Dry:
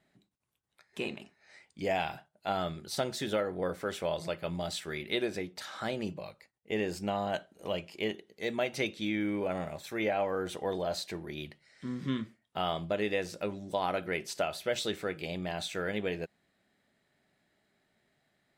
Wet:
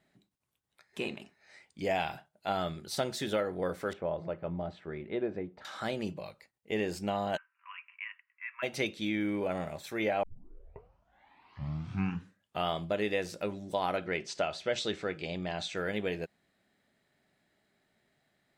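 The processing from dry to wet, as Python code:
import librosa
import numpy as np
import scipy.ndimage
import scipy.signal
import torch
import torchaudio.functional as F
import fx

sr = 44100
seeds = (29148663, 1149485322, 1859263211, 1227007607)

y = fx.bessel_lowpass(x, sr, hz=1000.0, order=2, at=(3.93, 5.65))
y = fx.cheby1_bandpass(y, sr, low_hz=990.0, high_hz=2700.0, order=5, at=(7.36, 8.62), fade=0.02)
y = fx.lowpass(y, sr, hz=7200.0, slope=24, at=(13.97, 15.77))
y = fx.edit(y, sr, fx.tape_start(start_s=10.23, length_s=2.46), tone=tone)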